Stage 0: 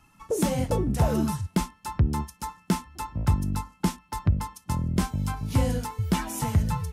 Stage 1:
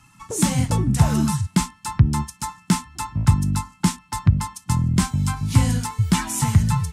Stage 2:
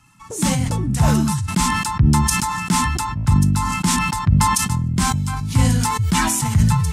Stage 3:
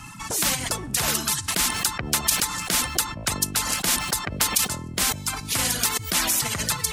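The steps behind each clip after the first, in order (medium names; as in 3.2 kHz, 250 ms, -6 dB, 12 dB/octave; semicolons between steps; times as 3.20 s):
ten-band graphic EQ 125 Hz +10 dB, 250 Hz +4 dB, 500 Hz -9 dB, 1 kHz +6 dB, 2 kHz +5 dB, 4 kHz +5 dB, 8 kHz +11 dB
decay stretcher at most 24 dB/s; trim -2 dB
reverb removal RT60 1.6 s; spectrum-flattening compressor 4:1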